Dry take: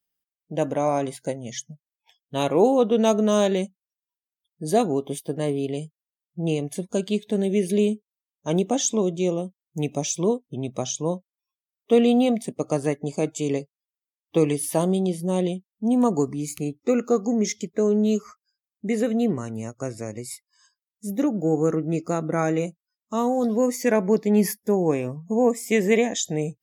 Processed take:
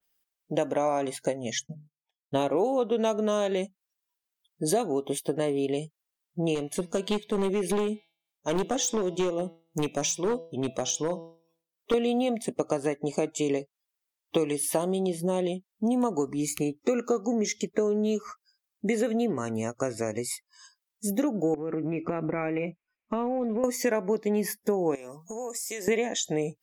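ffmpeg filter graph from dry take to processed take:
ffmpeg -i in.wav -filter_complex "[0:a]asettb=1/sr,asplit=3[link_01][link_02][link_03];[link_01]atrim=end=1.594[link_04];[link_02]atrim=start=1.59:end=2.57,asetpts=PTS-STARTPTS,afade=type=in:duration=0.004:curve=qsin,afade=type=out:start_time=0.976:duration=0.004:curve=qsin,tiltshelf=frequency=880:gain=5,bandreject=frequency=50:width_type=h:width=6,bandreject=frequency=100:width_type=h:width=6,bandreject=frequency=150:width_type=h:width=6,bandreject=frequency=200:width_type=h:width=6,bandreject=frequency=250:width_type=h:width=6,bandreject=frequency=300:width_type=h:width=6,bandreject=frequency=350:width_type=h:width=6,bandreject=frequency=400:width_type=h:width=6,bandreject=frequency=450:width_type=h:width=6,agate=range=-33dB:threshold=-57dB:ratio=16:release=100:detection=peak[link_05];[link_03]atrim=start=2.566[link_06];[link_04][link_05]acrossfade=duration=0.004:curve1=hsin:curve2=qsin[link_07];[link_07][link_06]acrossfade=duration=0.004:curve1=qsin:curve2=hsin,asettb=1/sr,asplit=3[link_08][link_09][link_10];[link_08]atrim=end=6.554[link_11];[link_09]atrim=start=6.55:end=11.94,asetpts=PTS-STARTPTS,afade=type=in:duration=0.004:curve=qsin,afade=type=out:start_time=5.386:duration=0.004:curve=qsin,bandreject=frequency=165:width_type=h:width=4,bandreject=frequency=330:width_type=h:width=4,bandreject=frequency=495:width_type=h:width=4,bandreject=frequency=660:width_type=h:width=4,bandreject=frequency=825:width_type=h:width=4,bandreject=frequency=990:width_type=h:width=4,bandreject=frequency=1155:width_type=h:width=4,bandreject=frequency=1320:width_type=h:width=4,bandreject=frequency=1485:width_type=h:width=4,bandreject=frequency=1650:width_type=h:width=4,bandreject=frequency=1815:width_type=h:width=4,bandreject=frequency=1980:width_type=h:width=4,bandreject=frequency=2145:width_type=h:width=4,bandreject=frequency=2310:width_type=h:width=4,bandreject=frequency=2475:width_type=h:width=4,bandreject=frequency=2640:width_type=h:width=4,bandreject=frequency=2805:width_type=h:width=4,bandreject=frequency=2970:width_type=h:width=4,bandreject=frequency=3135:width_type=h:width=4,bandreject=frequency=3300:width_type=h:width=4,bandreject=frequency=3465:width_type=h:width=4,bandreject=frequency=3630:width_type=h:width=4,bandreject=frequency=3795:width_type=h:width=4,bandreject=frequency=3960:width_type=h:width=4,bandreject=frequency=4125:width_type=h:width=4,bandreject=frequency=4290:width_type=h:width=4,bandreject=frequency=4455:width_type=h:width=4,bandreject=frequency=4620:width_type=h:width=4,bandreject=frequency=4785:width_type=h:width=4,bandreject=frequency=4950:width_type=h:width=4,bandreject=frequency=5115:width_type=h:width=4,bandreject=frequency=5280:width_type=h:width=4,bandreject=frequency=5445:width_type=h:width=4,bandreject=frequency=5610:width_type=h:width=4,bandreject=frequency=5775:width_type=h:width=4,tremolo=f=3.4:d=0.5,asoftclip=type=hard:threshold=-21.5dB[link_12];[link_10]atrim=start=11.936[link_13];[link_11][link_12]acrossfade=duration=0.004:curve1=hsin:curve2=qsin[link_14];[link_14][link_13]acrossfade=duration=0.004:curve1=qsin:curve2=hsin,asettb=1/sr,asplit=3[link_15][link_16][link_17];[link_15]atrim=end=21.544[link_18];[link_16]atrim=start=21.54:end=23.64,asetpts=PTS-STARTPTS,afade=type=in:duration=0.004:curve=qsin,afade=type=out:start_time=2.096:duration=0.004:curve=qsin,tiltshelf=frequency=790:gain=6.5,acompressor=threshold=-27dB:ratio=16:attack=3.2:release=140:knee=1:detection=peak,lowpass=frequency=2400:width_type=q:width=6.1[link_19];[link_17]atrim=start=23.636[link_20];[link_18][link_19]acrossfade=duration=0.004:curve1=hsin:curve2=qsin[link_21];[link_21][link_20]acrossfade=duration=0.004:curve1=qsin:curve2=hsin,asettb=1/sr,asplit=3[link_22][link_23][link_24];[link_22]atrim=end=24.954[link_25];[link_23]atrim=start=24.95:end=25.88,asetpts=PTS-STARTPTS,afade=type=in:duration=0.004:curve=qsin,afade=type=out:start_time=0.926:duration=0.004:curve=qsin,highpass=frequency=630:poles=1,highshelf=frequency=3900:width_type=q:width=1.5:gain=8.5,acompressor=threshold=-38dB:ratio=6:attack=3.2:release=140:knee=1:detection=peak[link_26];[link_24]atrim=start=25.876[link_27];[link_25][link_26]acrossfade=duration=0.004:curve1=hsin:curve2=qsin[link_28];[link_28][link_27]acrossfade=duration=0.004:curve1=qsin:curve2=hsin,equalizer=frequency=130:width_type=o:width=1.9:gain=-9.5,acompressor=threshold=-31dB:ratio=5,adynamicequalizer=threshold=0.00178:dfrequency=3400:dqfactor=0.7:tfrequency=3400:tqfactor=0.7:attack=5:release=100:ratio=0.375:range=2.5:mode=cutabove:tftype=highshelf,volume=7.5dB" out.wav

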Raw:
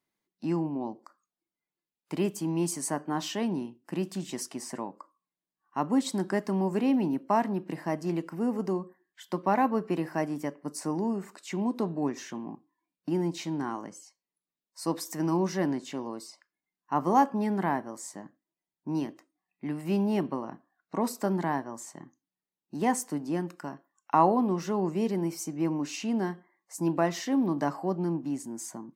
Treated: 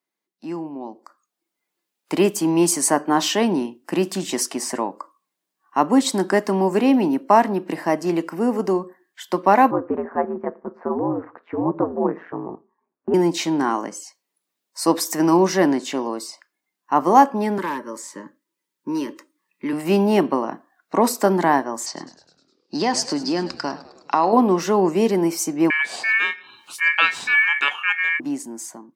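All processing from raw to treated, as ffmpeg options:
ffmpeg -i in.wav -filter_complex "[0:a]asettb=1/sr,asplit=3[link_01][link_02][link_03];[link_01]atrim=end=9.714[link_04];[link_02]atrim=start=9.71:end=13.14,asetpts=PTS-STARTPTS,afade=type=in:duration=0.004:curve=qsin,afade=type=out:start_time=3.426:duration=0.004:curve=qsin,lowpass=frequency=1500:width=0.5412,lowpass=frequency=1500:width=1.3066,aeval=exprs='val(0)*sin(2*PI*85*n/s)':channel_layout=same[link_05];[link_03]atrim=start=13.136[link_06];[link_04][link_05]acrossfade=duration=0.004:curve1=hsin:curve2=qsin[link_07];[link_07][link_06]acrossfade=duration=0.004:curve1=qsin:curve2=hsin,asettb=1/sr,asplit=3[link_08][link_09][link_10];[link_08]atrim=end=17.584[link_11];[link_09]atrim=start=17.58:end=19.73,asetpts=PTS-STARTPTS,afade=type=in:duration=0.004:curve=qsin,afade=type=out:start_time=2.146:duration=0.004:curve=qsin,asuperstop=centerf=720:order=20:qfactor=2.9,aeval=exprs='clip(val(0),-1,0.0562)':channel_layout=same,acrossover=split=220|4600[link_12][link_13][link_14];[link_12]acompressor=threshold=-47dB:ratio=4[link_15];[link_13]acompressor=threshold=-33dB:ratio=4[link_16];[link_14]acompressor=threshold=-48dB:ratio=4[link_17];[link_15][link_16][link_17]amix=inputs=3:normalize=0[link_18];[link_10]atrim=start=19.726[link_19];[link_11][link_18]acrossfade=duration=0.004:curve1=hsin:curve2=qsin[link_20];[link_20][link_19]acrossfade=duration=0.004:curve1=qsin:curve2=hsin,asettb=1/sr,asplit=3[link_21][link_22][link_23];[link_21]atrim=end=21.864[link_24];[link_22]atrim=start=21.86:end=24.33,asetpts=PTS-STARTPTS,afade=type=in:duration=0.004:curve=qsin,afade=type=out:start_time=2.466:duration=0.004:curve=qsin,lowpass=frequency=4800:width_type=q:width=8.7,acompressor=threshold=-29dB:ratio=3:attack=3.2:release=140:knee=1:detection=peak,asplit=7[link_25][link_26][link_27][link_28][link_29][link_30][link_31];[link_26]adelay=103,afreqshift=-110,volume=-15.5dB[link_32];[link_27]adelay=206,afreqshift=-220,volume=-19.8dB[link_33];[link_28]adelay=309,afreqshift=-330,volume=-24.1dB[link_34];[link_29]adelay=412,afreqshift=-440,volume=-28.4dB[link_35];[link_30]adelay=515,afreqshift=-550,volume=-32.7dB[link_36];[link_31]adelay=618,afreqshift=-660,volume=-37dB[link_37];[link_25][link_32][link_33][link_34][link_35][link_36][link_37]amix=inputs=7:normalize=0,atrim=end_sample=108927[link_38];[link_23]atrim=start=24.326[link_39];[link_24][link_38]acrossfade=duration=0.004:curve1=hsin:curve2=qsin[link_40];[link_40][link_39]acrossfade=duration=0.004:curve1=qsin:curve2=hsin,asettb=1/sr,asplit=3[link_41][link_42][link_43];[link_41]atrim=end=25.704[link_44];[link_42]atrim=start=25.7:end=28.2,asetpts=PTS-STARTPTS,afade=type=in:duration=0.004:curve=qsin,afade=type=out:start_time=2.496:duration=0.004:curve=qsin,highshelf=frequency=4900:gain=-11,acompressor=mode=upward:threshold=-36dB:ratio=2.5:attack=3.2:release=140:knee=2.83:detection=peak,aeval=exprs='val(0)*sin(2*PI*2000*n/s)':channel_layout=same[link_45];[link_43]atrim=start=28.196[link_46];[link_44][link_45]acrossfade=duration=0.004:curve1=hsin:curve2=qsin[link_47];[link_47][link_46]acrossfade=duration=0.004:curve1=qsin:curve2=hsin,highpass=270,dynaudnorm=framelen=880:gausssize=3:maxgain=14dB" out.wav

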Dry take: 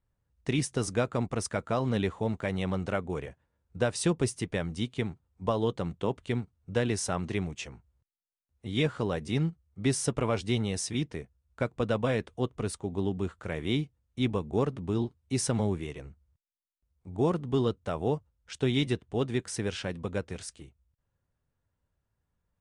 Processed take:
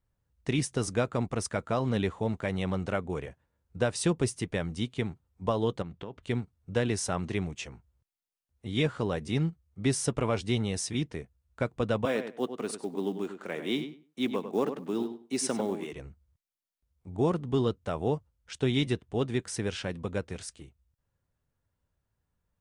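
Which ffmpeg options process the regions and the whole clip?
ffmpeg -i in.wav -filter_complex "[0:a]asettb=1/sr,asplit=3[link_01][link_02][link_03];[link_01]atrim=end=5.824[link_04];[link_02]atrim=start=5.82:end=6.23,asetpts=PTS-STARTPTS,afade=type=in:duration=0.004:curve=qsin,afade=type=out:start_time=0.406:duration=0.004:curve=qsin,lowpass=4500,acompressor=threshold=-37dB:ratio=4:attack=3.2:release=140:knee=1:detection=peak[link_05];[link_03]atrim=start=6.226[link_06];[link_04][link_05]acrossfade=duration=0.004:curve1=hsin:curve2=qsin[link_07];[link_07][link_06]acrossfade=duration=0.004:curve1=qsin:curve2=hsin,asettb=1/sr,asplit=3[link_08][link_09][link_10];[link_08]atrim=end=12.054[link_11];[link_09]atrim=start=12.05:end=15.93,asetpts=PTS-STARTPTS,afade=type=in:duration=0.004:curve=qsin,afade=type=out:start_time=3.876:duration=0.004:curve=qsin,highpass=frequency=210:width=0.5412,highpass=frequency=210:width=1.3066,acrusher=bits=8:mode=log:mix=0:aa=0.000001,asplit=2[link_12][link_13];[link_13]adelay=98,lowpass=frequency=3200:poles=1,volume=-9dB,asplit=2[link_14][link_15];[link_15]adelay=98,lowpass=frequency=3200:poles=1,volume=0.19,asplit=2[link_16][link_17];[link_17]adelay=98,lowpass=frequency=3200:poles=1,volume=0.19[link_18];[link_12][link_14][link_16][link_18]amix=inputs=4:normalize=0,atrim=end_sample=171108[link_19];[link_10]atrim=start=15.926[link_20];[link_11][link_19]acrossfade=duration=0.004:curve1=hsin:curve2=qsin[link_21];[link_21][link_20]acrossfade=duration=0.004:curve1=qsin:curve2=hsin" out.wav

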